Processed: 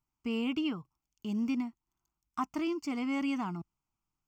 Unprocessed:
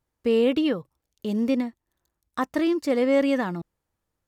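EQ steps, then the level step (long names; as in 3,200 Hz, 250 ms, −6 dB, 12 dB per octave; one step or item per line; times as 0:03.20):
parametric band 77 Hz −13 dB 0.44 octaves
phaser with its sweep stopped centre 2,600 Hz, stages 8
−4.5 dB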